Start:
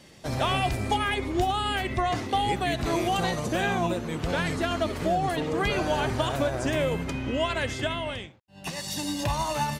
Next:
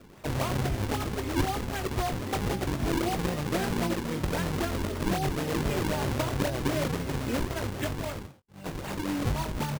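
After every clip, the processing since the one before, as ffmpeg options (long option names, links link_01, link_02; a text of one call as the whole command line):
ffmpeg -i in.wav -filter_complex "[0:a]acrossover=split=420[link_01][link_02];[link_02]acompressor=threshold=-34dB:ratio=2.5[link_03];[link_01][link_03]amix=inputs=2:normalize=0,acrusher=samples=40:mix=1:aa=0.000001:lfo=1:lforange=64:lforate=3.8,asplit=2[link_04][link_05];[link_05]adelay=21,volume=-10dB[link_06];[link_04][link_06]amix=inputs=2:normalize=0" out.wav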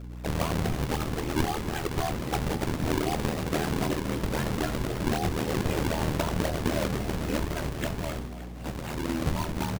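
ffmpeg -i in.wav -filter_complex "[0:a]aeval=exprs='val(0)*sin(2*PI*39*n/s)':channel_layout=same,aeval=exprs='val(0)+0.00891*(sin(2*PI*60*n/s)+sin(2*PI*2*60*n/s)/2+sin(2*PI*3*60*n/s)/3+sin(2*PI*4*60*n/s)/4+sin(2*PI*5*60*n/s)/5)':channel_layout=same,asplit=2[link_01][link_02];[link_02]asplit=6[link_03][link_04][link_05][link_06][link_07][link_08];[link_03]adelay=284,afreqshift=59,volume=-14dB[link_09];[link_04]adelay=568,afreqshift=118,volume=-18.4dB[link_10];[link_05]adelay=852,afreqshift=177,volume=-22.9dB[link_11];[link_06]adelay=1136,afreqshift=236,volume=-27.3dB[link_12];[link_07]adelay=1420,afreqshift=295,volume=-31.7dB[link_13];[link_08]adelay=1704,afreqshift=354,volume=-36.2dB[link_14];[link_09][link_10][link_11][link_12][link_13][link_14]amix=inputs=6:normalize=0[link_15];[link_01][link_15]amix=inputs=2:normalize=0,volume=3dB" out.wav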